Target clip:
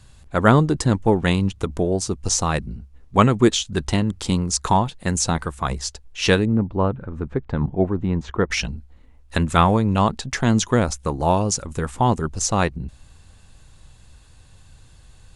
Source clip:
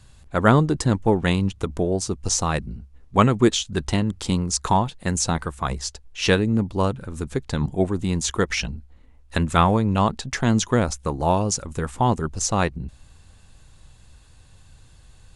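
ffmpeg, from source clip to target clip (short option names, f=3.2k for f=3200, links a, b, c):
-filter_complex "[0:a]asettb=1/sr,asplit=3[a][b][c];[a]atrim=end=6.454[d];[b]atrim=start=6.45:end=8.51,asetpts=PTS-STARTPTS,afade=t=in:d=0.004:c=qsin,afade=t=out:st=2.056:d=0.004:c=qsin,lowpass=1.6k[e];[c]atrim=start=8.506[f];[d][e]acrossfade=d=0.004:c1=hsin:c2=qsin[g];[g][f]acrossfade=d=0.004:c1=qsin:c2=hsin,volume=1.5dB"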